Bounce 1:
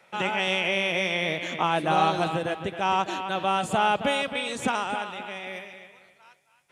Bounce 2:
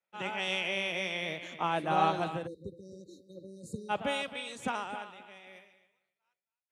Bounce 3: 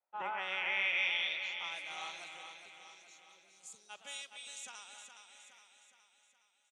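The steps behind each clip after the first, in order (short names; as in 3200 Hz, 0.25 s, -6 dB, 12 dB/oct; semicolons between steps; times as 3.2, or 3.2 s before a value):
spectral delete 2.47–3.89, 580–3700 Hz; three-band expander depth 70%; gain -8.5 dB
band-pass sweep 770 Hz -> 6700 Hz, 0.01–1.86; feedback echo 0.416 s, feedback 52%, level -8 dB; gain +5 dB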